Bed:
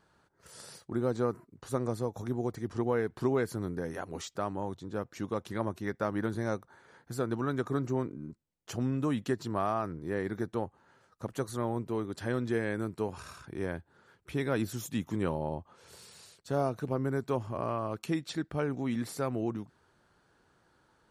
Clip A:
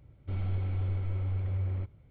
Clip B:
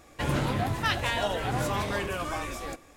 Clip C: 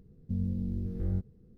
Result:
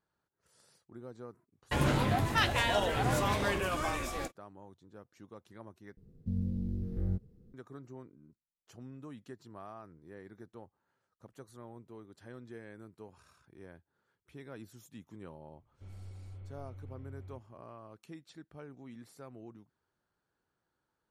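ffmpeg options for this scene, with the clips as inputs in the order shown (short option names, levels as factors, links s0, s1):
-filter_complex "[0:a]volume=0.141[s0];[2:a]agate=range=0.01:threshold=0.00447:ratio=16:release=100:detection=peak[s1];[s0]asplit=2[s2][s3];[s2]atrim=end=5.974[s4];[3:a]atrim=end=1.57,asetpts=PTS-STARTPTS,volume=0.794[s5];[s3]atrim=start=7.536[s6];[s1]atrim=end=2.96,asetpts=PTS-STARTPTS,volume=0.891,afade=t=in:d=0.004:c=hsin,afade=t=out:st=2.956:d=0.004:c=hsin,adelay=1520[s7];[1:a]atrim=end=2.1,asetpts=PTS-STARTPTS,volume=0.15,afade=t=in:d=0.004:c=hsin,afade=t=out:st=2.096:d=0.004:c=hsin,adelay=15530[s8];[s4][s5]acrossfade=d=0.004:c1=hsin:c2=hsin[s9];[s9][s6]acrossfade=d=0.004:c1=hsin:c2=hsin[s10];[s10][s7][s8]amix=inputs=3:normalize=0"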